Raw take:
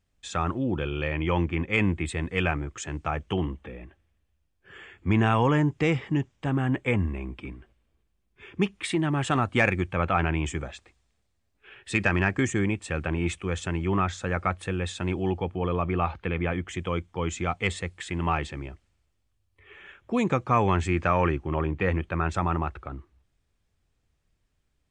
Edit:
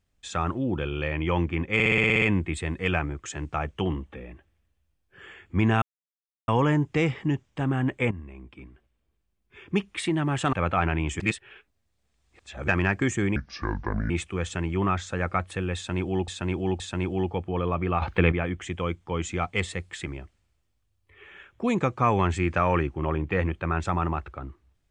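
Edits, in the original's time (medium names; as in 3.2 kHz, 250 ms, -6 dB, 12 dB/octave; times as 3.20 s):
1.74 s: stutter 0.06 s, 9 plays
5.34 s: insert silence 0.66 s
6.97–8.73 s: fade in, from -13 dB
9.39–9.90 s: delete
10.57–12.05 s: reverse
12.73–13.21 s: speed 65%
14.87–15.39 s: loop, 3 plays
16.09–16.39 s: gain +8.5 dB
18.13–18.55 s: delete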